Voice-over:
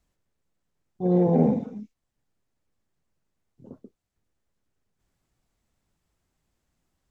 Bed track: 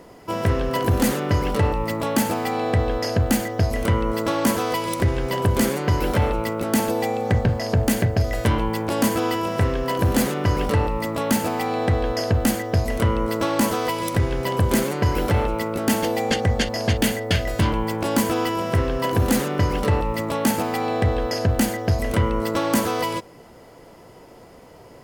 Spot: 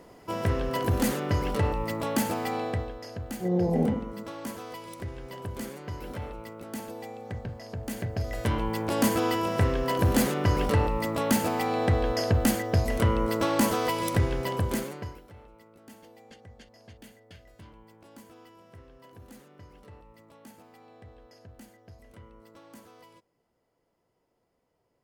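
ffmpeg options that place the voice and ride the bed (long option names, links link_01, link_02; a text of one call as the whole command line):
ffmpeg -i stem1.wav -i stem2.wav -filter_complex "[0:a]adelay=2400,volume=-5dB[link_01];[1:a]volume=7.5dB,afade=type=out:start_time=2.55:duration=0.39:silence=0.281838,afade=type=in:start_time=7.81:duration=1.26:silence=0.211349,afade=type=out:start_time=14.19:duration=1.02:silence=0.0473151[link_02];[link_01][link_02]amix=inputs=2:normalize=0" out.wav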